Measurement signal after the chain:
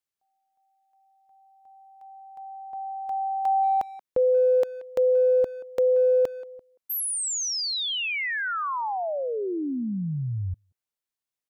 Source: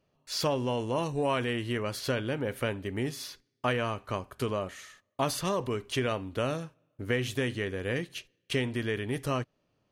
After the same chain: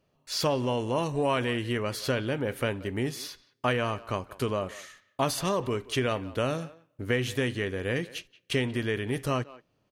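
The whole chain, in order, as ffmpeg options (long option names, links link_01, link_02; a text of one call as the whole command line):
ffmpeg -i in.wav -filter_complex "[0:a]asplit=2[link_01][link_02];[link_02]adelay=180,highpass=300,lowpass=3400,asoftclip=type=hard:threshold=-22dB,volume=-18dB[link_03];[link_01][link_03]amix=inputs=2:normalize=0,volume=2dB" out.wav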